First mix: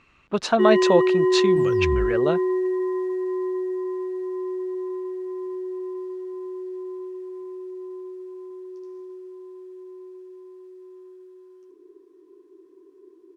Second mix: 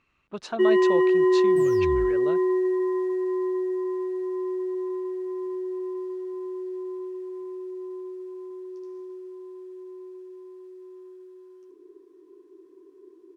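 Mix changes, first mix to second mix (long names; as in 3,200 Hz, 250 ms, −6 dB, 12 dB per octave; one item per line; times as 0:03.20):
speech −11.5 dB
second sound: add bass and treble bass −6 dB, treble +9 dB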